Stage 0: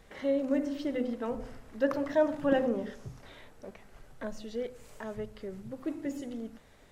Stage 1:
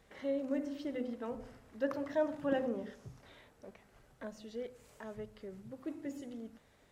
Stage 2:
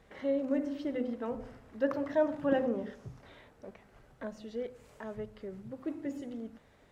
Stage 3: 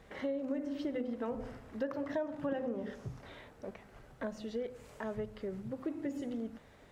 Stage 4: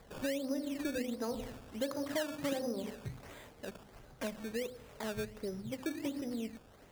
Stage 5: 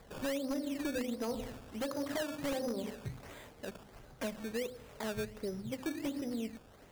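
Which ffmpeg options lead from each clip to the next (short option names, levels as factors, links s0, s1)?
-af "highpass=43,volume=0.473"
-af "highshelf=f=4000:g=-8.5,volume=1.68"
-af "acompressor=threshold=0.0141:ratio=5,volume=1.5"
-af "acrusher=samples=15:mix=1:aa=0.000001:lfo=1:lforange=15:lforate=1.4"
-af "aeval=exprs='0.0316*(abs(mod(val(0)/0.0316+3,4)-2)-1)':c=same,volume=1.12"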